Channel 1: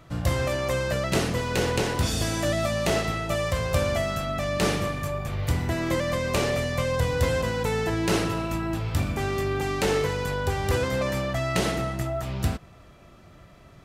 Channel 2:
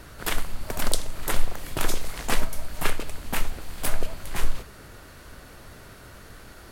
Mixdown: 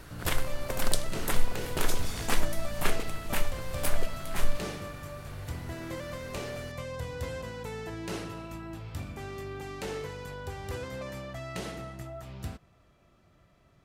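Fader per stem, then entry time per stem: -12.5, -3.5 dB; 0.00, 0.00 s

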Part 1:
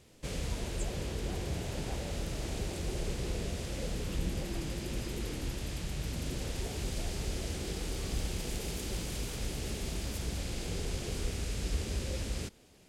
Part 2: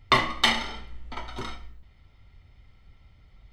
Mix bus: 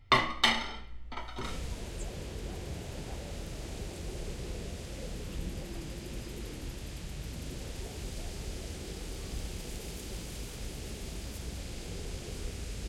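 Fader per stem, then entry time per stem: -4.0, -4.0 dB; 1.20, 0.00 s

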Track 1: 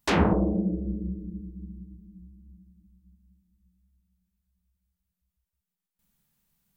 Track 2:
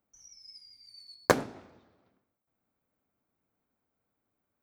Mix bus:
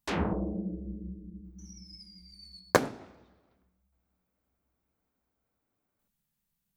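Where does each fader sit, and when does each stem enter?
-8.5, 0.0 dB; 0.00, 1.45 s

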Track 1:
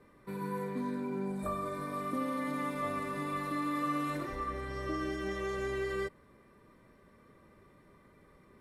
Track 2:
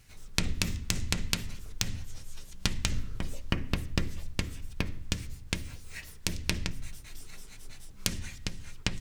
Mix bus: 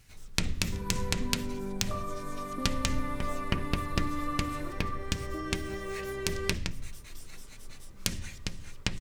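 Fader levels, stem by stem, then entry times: -1.5, -0.5 dB; 0.45, 0.00 s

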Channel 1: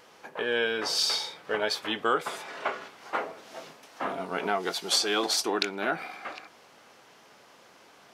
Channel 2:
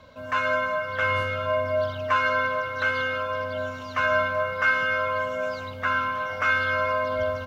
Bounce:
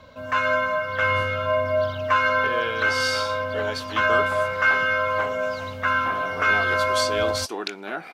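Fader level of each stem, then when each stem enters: -2.5, +2.5 dB; 2.05, 0.00 s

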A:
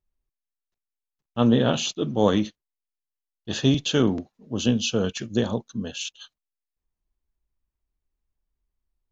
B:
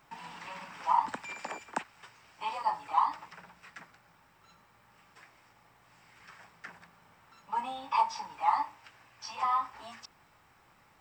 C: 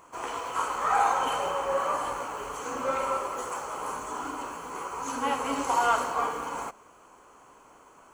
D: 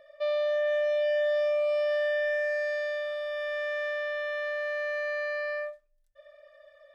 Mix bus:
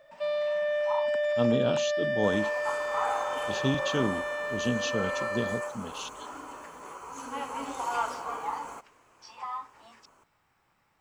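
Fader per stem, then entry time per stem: -8.0, -7.5, -7.5, -1.5 dB; 0.00, 0.00, 2.10, 0.00 s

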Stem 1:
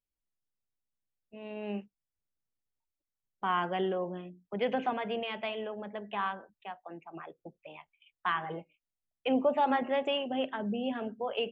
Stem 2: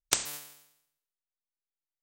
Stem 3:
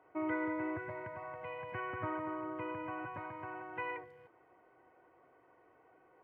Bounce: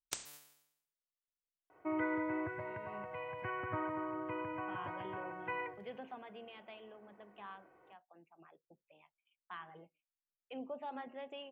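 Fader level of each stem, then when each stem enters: -17.0, -14.5, 0.0 dB; 1.25, 0.00, 1.70 s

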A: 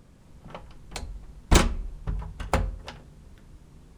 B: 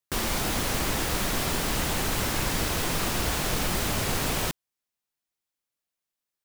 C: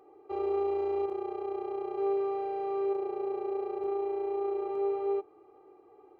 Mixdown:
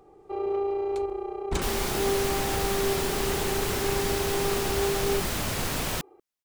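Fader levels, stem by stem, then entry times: -12.0, -2.0, +2.0 dB; 0.00, 1.50, 0.00 s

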